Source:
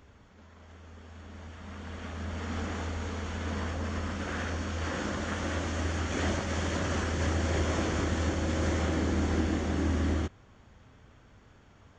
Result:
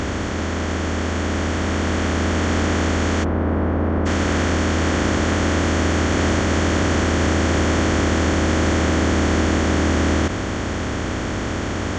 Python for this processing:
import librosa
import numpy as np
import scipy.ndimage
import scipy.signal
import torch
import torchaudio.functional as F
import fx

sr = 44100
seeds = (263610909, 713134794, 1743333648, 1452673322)

y = fx.bin_compress(x, sr, power=0.2)
y = fx.lowpass(y, sr, hz=1100.0, slope=12, at=(3.23, 4.05), fade=0.02)
y = y * 10.0 ** (5.5 / 20.0)